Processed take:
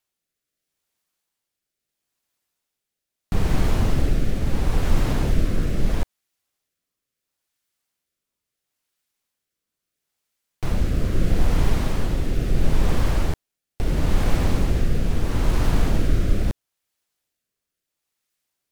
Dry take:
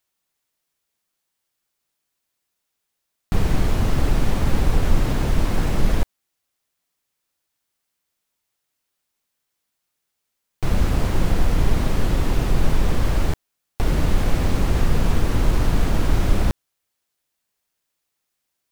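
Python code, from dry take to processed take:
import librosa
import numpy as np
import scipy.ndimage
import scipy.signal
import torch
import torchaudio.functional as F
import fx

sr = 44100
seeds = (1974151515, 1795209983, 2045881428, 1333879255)

y = fx.rotary(x, sr, hz=0.75)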